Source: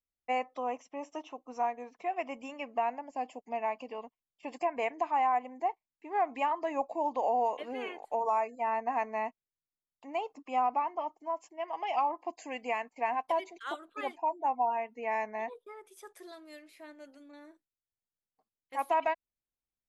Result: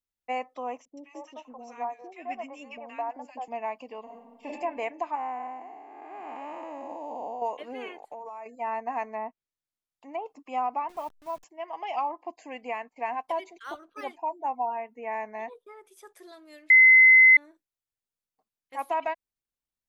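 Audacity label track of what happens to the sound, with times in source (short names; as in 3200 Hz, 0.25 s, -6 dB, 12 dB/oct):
0.850000	3.480000	three bands offset in time lows, highs, mids 0.12/0.21 s, splits 470/1500 Hz
4.030000	4.470000	reverb throw, RT60 1.5 s, DRR -5.5 dB
5.150000	7.420000	time blur width 0.429 s
7.930000	8.460000	compressor 12:1, threshold -36 dBFS
9.070000	10.260000	treble ducked by the level closes to 1400 Hz, closed at -30 dBFS
10.890000	11.440000	level-crossing sampler step -48 dBFS
12.130000	13.000000	high shelf 5300 Hz -10 dB
13.640000	14.040000	decimation joined by straight lines rate divided by 6×
14.660000	15.260000	bell 4700 Hz -14.5 dB 0.81 oct
16.700000	17.370000	bleep 2050 Hz -11.5 dBFS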